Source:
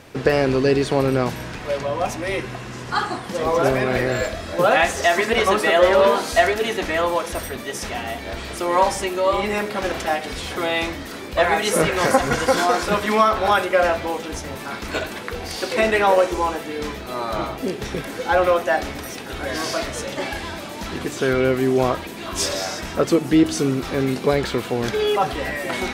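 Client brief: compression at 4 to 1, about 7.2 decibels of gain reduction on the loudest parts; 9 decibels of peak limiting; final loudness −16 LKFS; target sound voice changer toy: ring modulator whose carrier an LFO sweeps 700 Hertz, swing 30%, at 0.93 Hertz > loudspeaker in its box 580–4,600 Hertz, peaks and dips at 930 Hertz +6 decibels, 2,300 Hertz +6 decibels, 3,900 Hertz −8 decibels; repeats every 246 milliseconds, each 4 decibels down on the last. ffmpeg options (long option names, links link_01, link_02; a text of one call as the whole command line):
ffmpeg -i in.wav -af "acompressor=threshold=-19dB:ratio=4,alimiter=limit=-15.5dB:level=0:latency=1,aecho=1:1:246|492|738|984|1230|1476|1722|1968|2214:0.631|0.398|0.25|0.158|0.0994|0.0626|0.0394|0.0249|0.0157,aeval=exprs='val(0)*sin(2*PI*700*n/s+700*0.3/0.93*sin(2*PI*0.93*n/s))':channel_layout=same,highpass=580,equalizer=frequency=930:width_type=q:width=4:gain=6,equalizer=frequency=2300:width_type=q:width=4:gain=6,equalizer=frequency=3900:width_type=q:width=4:gain=-8,lowpass=frequency=4600:width=0.5412,lowpass=frequency=4600:width=1.3066,volume=10.5dB" out.wav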